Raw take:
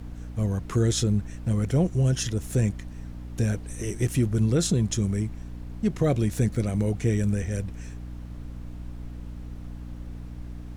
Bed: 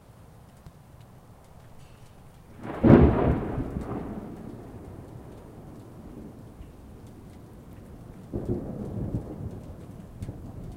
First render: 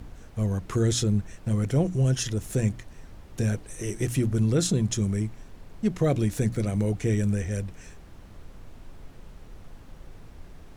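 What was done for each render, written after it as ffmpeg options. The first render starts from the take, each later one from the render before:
-af "bandreject=f=60:t=h:w=6,bandreject=f=120:t=h:w=6,bandreject=f=180:t=h:w=6,bandreject=f=240:t=h:w=6,bandreject=f=300:t=h:w=6"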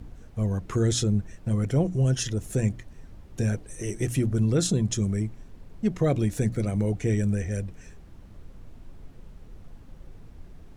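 -af "afftdn=nr=6:nf=-48"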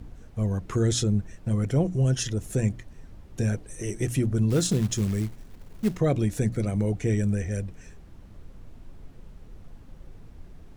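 -filter_complex "[0:a]asettb=1/sr,asplit=3[a][b][c];[a]atrim=end=4.504[d];[b]atrim=start=4.5:end=5.98,asetpts=PTS-STARTPTS,afade=t=in:d=0.004:c=qsin,afade=t=out:st=1.476:d=0.004:c=qsin,acrusher=bits=5:mode=log:mix=0:aa=0.000001[e];[c]atrim=start=5.976[f];[d][e]acrossfade=d=0.004:c1=hsin:c2=qsin[g];[g][f]acrossfade=d=0.004:c1=qsin:c2=hsin"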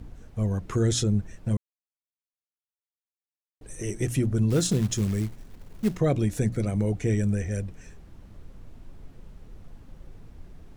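-filter_complex "[0:a]asplit=3[a][b][c];[a]atrim=end=1.57,asetpts=PTS-STARTPTS,afade=t=out:st=1.566:d=0.004:c=hsin[d];[b]atrim=start=1.57:end=3.61,asetpts=PTS-STARTPTS,volume=0[e];[c]atrim=start=3.61,asetpts=PTS-STARTPTS,afade=t=in:d=0.004:c=hsin[f];[d][e][f]concat=n=3:v=0:a=1"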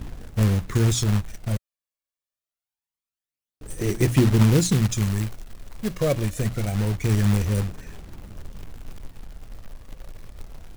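-af "aphaser=in_gain=1:out_gain=1:delay=1.8:decay=0.56:speed=0.25:type=sinusoidal,acrusher=bits=3:mode=log:mix=0:aa=0.000001"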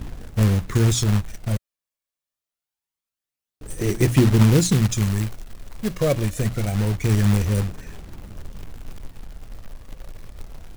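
-af "volume=2dB"

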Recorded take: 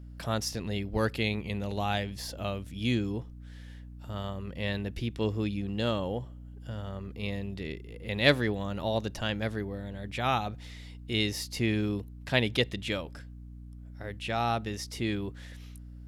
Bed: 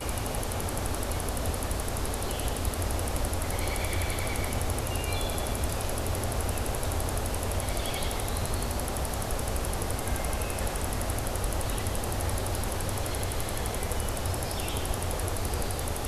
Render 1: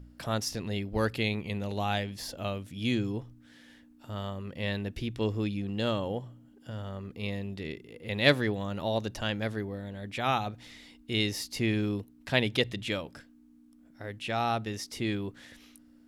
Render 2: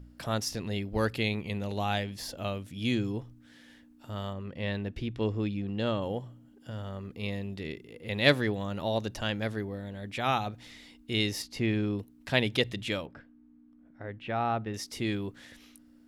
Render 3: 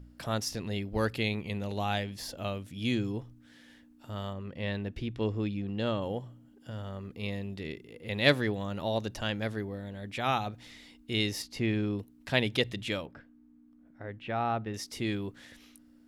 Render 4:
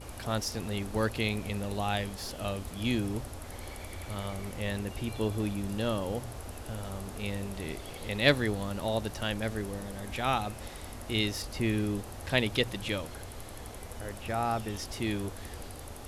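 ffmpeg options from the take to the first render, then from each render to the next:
-af "bandreject=f=60:t=h:w=4,bandreject=f=120:t=h:w=4,bandreject=f=180:t=h:w=4"
-filter_complex "[0:a]asettb=1/sr,asplit=3[a][b][c];[a]atrim=end=4.334[d];[b]atrim=start=4.33:end=6.02,asetpts=PTS-STARTPTS,afade=t=in:d=0.004:c=qsin,afade=t=out:st=1.686:d=0.004:c=qsin,aemphasis=mode=reproduction:type=50kf[e];[c]atrim=start=6.016[f];[d][e]acrossfade=d=0.004:c1=hsin:c2=qsin[g];[g][f]acrossfade=d=0.004:c1=qsin:c2=hsin,asettb=1/sr,asplit=3[h][i][j];[h]atrim=end=11.424[k];[i]atrim=start=11.42:end=11.99,asetpts=PTS-STARTPTS,afade=t=in:d=0.004:c=qsin,afade=t=out:st=0.566:d=0.004:c=qsin,lowpass=f=3.1k:p=1[l];[j]atrim=start=11.986[m];[k][l]acrossfade=d=0.004:c1=hsin:c2=qsin[n];[n][m]acrossfade=d=0.004:c1=qsin:c2=hsin,asettb=1/sr,asplit=3[o][p][q];[o]atrim=end=13.064[r];[p]atrim=start=13.06:end=14.74,asetpts=PTS-STARTPTS,afade=t=in:d=0.004:c=qsin,afade=t=out:st=1.676:d=0.004:c=qsin,lowpass=2k[s];[q]atrim=start=14.736[t];[r][s]acrossfade=d=0.004:c1=hsin:c2=qsin[u];[u][t]acrossfade=d=0.004:c1=qsin:c2=hsin"
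-af "volume=-1dB"
-filter_complex "[1:a]volume=-12.5dB[a];[0:a][a]amix=inputs=2:normalize=0"

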